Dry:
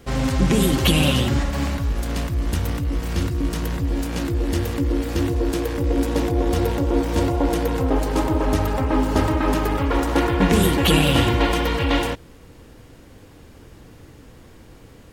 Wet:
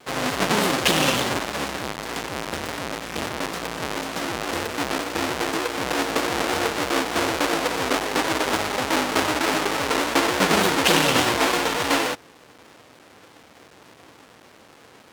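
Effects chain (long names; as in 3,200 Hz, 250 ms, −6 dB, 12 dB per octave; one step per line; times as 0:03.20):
each half-wave held at its own peak
meter weighting curve A
pitch modulation by a square or saw wave saw down 3.4 Hz, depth 100 cents
level −1.5 dB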